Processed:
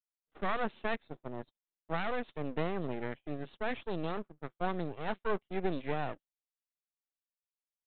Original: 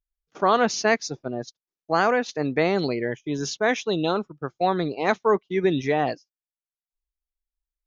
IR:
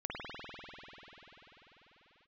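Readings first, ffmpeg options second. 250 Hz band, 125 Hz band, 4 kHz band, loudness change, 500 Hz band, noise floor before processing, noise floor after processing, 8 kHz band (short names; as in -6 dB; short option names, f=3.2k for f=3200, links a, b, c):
-12.5 dB, -9.5 dB, -16.0 dB, -13.5 dB, -14.0 dB, under -85 dBFS, under -85 dBFS, n/a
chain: -af "highpass=f=150:w=0.5412,highpass=f=150:w=1.3066,aemphasis=mode=reproduction:type=50fm,aresample=8000,aeval=exprs='max(val(0),0)':c=same,aresample=44100,volume=-8dB"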